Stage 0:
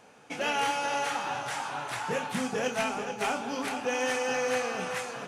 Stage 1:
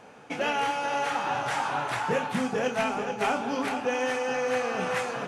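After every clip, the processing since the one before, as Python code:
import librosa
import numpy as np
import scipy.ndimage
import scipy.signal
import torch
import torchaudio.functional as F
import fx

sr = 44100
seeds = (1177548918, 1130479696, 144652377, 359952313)

y = fx.high_shelf(x, sr, hz=3700.0, db=-9.0)
y = fx.rider(y, sr, range_db=4, speed_s=0.5)
y = y * 10.0 ** (3.5 / 20.0)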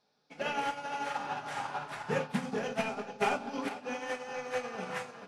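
y = fx.room_shoebox(x, sr, seeds[0], volume_m3=690.0, walls='furnished', distance_m=1.3)
y = fx.dmg_noise_band(y, sr, seeds[1], low_hz=3400.0, high_hz=5600.0, level_db=-53.0)
y = fx.upward_expand(y, sr, threshold_db=-39.0, expansion=2.5)
y = y * 10.0 ** (-3.0 / 20.0)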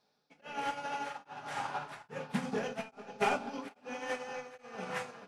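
y = x * np.abs(np.cos(np.pi * 1.2 * np.arange(len(x)) / sr))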